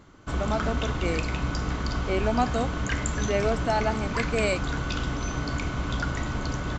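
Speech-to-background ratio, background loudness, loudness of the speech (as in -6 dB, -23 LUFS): 0.5 dB, -30.0 LUFS, -29.5 LUFS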